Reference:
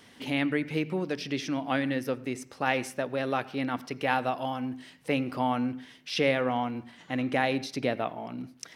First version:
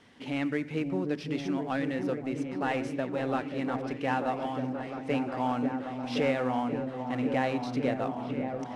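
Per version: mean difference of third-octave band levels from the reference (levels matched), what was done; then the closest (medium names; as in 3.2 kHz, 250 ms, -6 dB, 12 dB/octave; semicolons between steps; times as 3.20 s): 6.0 dB: CVSD coder 64 kbps; low-pass 8.6 kHz 12 dB/octave; treble shelf 3.9 kHz -10 dB; on a send: delay with an opening low-pass 532 ms, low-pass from 400 Hz, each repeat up 1 oct, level -3 dB; on the sum: trim -2 dB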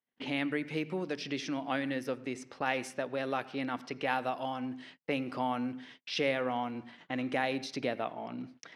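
2.0 dB: level-controlled noise filter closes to 2.7 kHz, open at -24 dBFS; high-pass 180 Hz 6 dB/octave; gate -52 dBFS, range -40 dB; in parallel at +1.5 dB: compression, threshold -37 dBFS, peak gain reduction 15.5 dB; on the sum: trim -6.5 dB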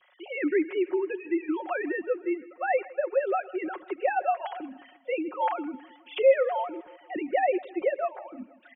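13.5 dB: formants replaced by sine waves; low-pass 2.3 kHz 6 dB/octave; comb 5.5 ms, depth 70%; feedback delay 160 ms, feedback 57%, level -21 dB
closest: second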